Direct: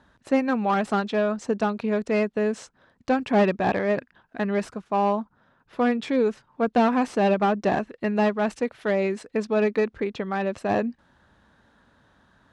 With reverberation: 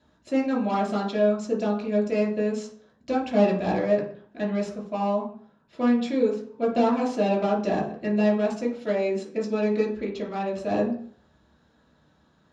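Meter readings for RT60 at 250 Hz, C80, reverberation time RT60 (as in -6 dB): 0.60 s, 11.5 dB, 0.55 s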